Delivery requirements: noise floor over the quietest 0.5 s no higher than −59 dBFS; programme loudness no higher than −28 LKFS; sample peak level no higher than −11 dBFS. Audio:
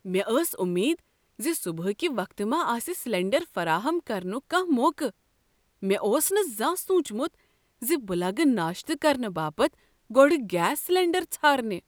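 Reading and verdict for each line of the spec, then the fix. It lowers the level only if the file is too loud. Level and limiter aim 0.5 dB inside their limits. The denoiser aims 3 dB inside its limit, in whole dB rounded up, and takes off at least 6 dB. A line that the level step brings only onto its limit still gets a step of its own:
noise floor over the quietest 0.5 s −69 dBFS: in spec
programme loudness −26.0 LKFS: out of spec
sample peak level −6.0 dBFS: out of spec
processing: level −2.5 dB
brickwall limiter −11.5 dBFS

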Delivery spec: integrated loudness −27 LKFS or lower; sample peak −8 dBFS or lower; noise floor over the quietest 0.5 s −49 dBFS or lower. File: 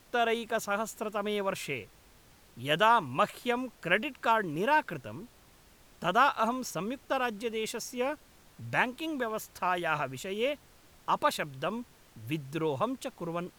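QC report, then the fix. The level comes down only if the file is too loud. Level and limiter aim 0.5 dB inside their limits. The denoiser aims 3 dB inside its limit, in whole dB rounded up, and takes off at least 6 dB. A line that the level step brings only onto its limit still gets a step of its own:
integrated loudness −31.0 LKFS: in spec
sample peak −11.5 dBFS: in spec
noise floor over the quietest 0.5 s −59 dBFS: in spec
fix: no processing needed

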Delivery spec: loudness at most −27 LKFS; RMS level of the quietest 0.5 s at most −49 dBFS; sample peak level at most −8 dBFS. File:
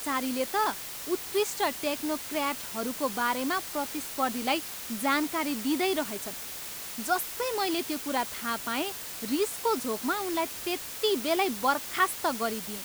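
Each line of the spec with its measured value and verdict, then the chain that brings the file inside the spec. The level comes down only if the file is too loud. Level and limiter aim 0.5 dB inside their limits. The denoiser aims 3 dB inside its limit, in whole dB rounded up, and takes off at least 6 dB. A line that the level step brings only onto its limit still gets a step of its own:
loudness −29.5 LKFS: in spec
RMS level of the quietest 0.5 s −39 dBFS: out of spec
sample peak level −12.0 dBFS: in spec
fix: broadband denoise 13 dB, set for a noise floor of −39 dBFS

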